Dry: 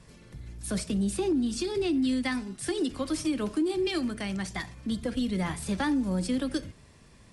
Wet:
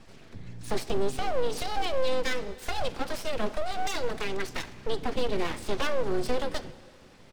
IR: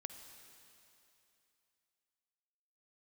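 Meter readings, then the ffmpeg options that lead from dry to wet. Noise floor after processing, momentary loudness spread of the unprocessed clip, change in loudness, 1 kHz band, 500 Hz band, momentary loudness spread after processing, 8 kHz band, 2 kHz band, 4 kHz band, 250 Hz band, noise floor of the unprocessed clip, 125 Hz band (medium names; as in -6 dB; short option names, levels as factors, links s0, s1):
-52 dBFS, 9 LU, -2.0 dB, +6.5 dB, +3.0 dB, 8 LU, -3.5 dB, +2.0 dB, +1.5 dB, -10.5 dB, -55 dBFS, -4.5 dB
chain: -filter_complex "[0:a]lowpass=5400,aecho=1:1:4.5:0.4,aeval=exprs='abs(val(0))':c=same,asplit=2[s0][s1];[1:a]atrim=start_sample=2205[s2];[s1][s2]afir=irnorm=-1:irlink=0,volume=0.668[s3];[s0][s3]amix=inputs=2:normalize=0"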